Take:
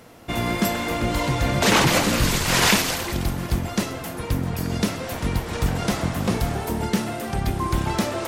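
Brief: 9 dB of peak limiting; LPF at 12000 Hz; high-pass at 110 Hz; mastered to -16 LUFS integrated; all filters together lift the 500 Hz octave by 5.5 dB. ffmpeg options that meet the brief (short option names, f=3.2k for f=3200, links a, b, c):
-af "highpass=110,lowpass=12k,equalizer=f=500:t=o:g=7,volume=8dB,alimiter=limit=-4dB:level=0:latency=1"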